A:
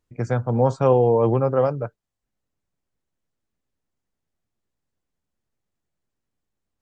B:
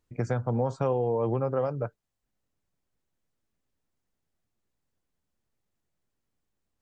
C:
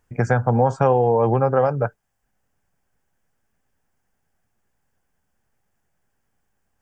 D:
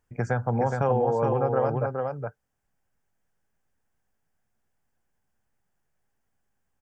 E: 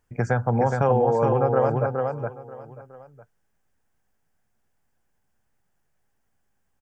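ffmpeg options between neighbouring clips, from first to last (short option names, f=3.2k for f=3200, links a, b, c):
-af "acompressor=threshold=-25dB:ratio=4"
-af "equalizer=f=315:t=o:w=0.33:g=-5,equalizer=f=800:t=o:w=0.33:g=7,equalizer=f=1.6k:t=o:w=0.33:g=8,equalizer=f=4k:t=o:w=0.33:g=-11,volume=9dB"
-af "aecho=1:1:418:0.631,volume=-7.5dB"
-af "aecho=1:1:952:0.106,volume=3.5dB"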